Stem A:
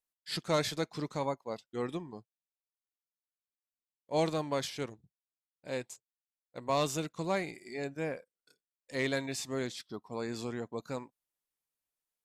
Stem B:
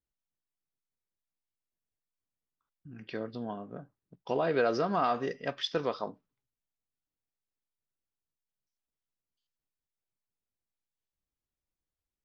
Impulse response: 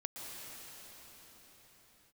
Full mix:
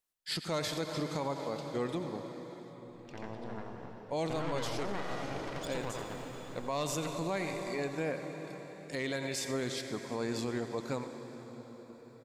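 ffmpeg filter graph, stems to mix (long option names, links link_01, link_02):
-filter_complex "[0:a]volume=1.5dB,asplit=4[link_01][link_02][link_03][link_04];[link_02]volume=-6dB[link_05];[link_03]volume=-12.5dB[link_06];[1:a]acompressor=threshold=-29dB:ratio=6,aeval=exprs='0.106*(cos(1*acos(clip(val(0)/0.106,-1,1)))-cos(1*PI/2))+0.0376*(cos(4*acos(clip(val(0)/0.106,-1,1)))-cos(4*PI/2))+0.0188*(cos(8*acos(clip(val(0)/0.106,-1,1)))-cos(8*PI/2))':channel_layout=same,volume=-7.5dB,asplit=3[link_07][link_08][link_09];[link_08]volume=-4dB[link_10];[link_09]volume=-6dB[link_11];[link_04]apad=whole_len=539913[link_12];[link_07][link_12]sidechaingate=range=-33dB:threshold=-52dB:ratio=16:detection=peak[link_13];[2:a]atrim=start_sample=2205[link_14];[link_05][link_10]amix=inputs=2:normalize=0[link_15];[link_15][link_14]afir=irnorm=-1:irlink=0[link_16];[link_06][link_11]amix=inputs=2:normalize=0,aecho=0:1:87:1[link_17];[link_01][link_13][link_16][link_17]amix=inputs=4:normalize=0,alimiter=level_in=1.5dB:limit=-24dB:level=0:latency=1:release=86,volume=-1.5dB"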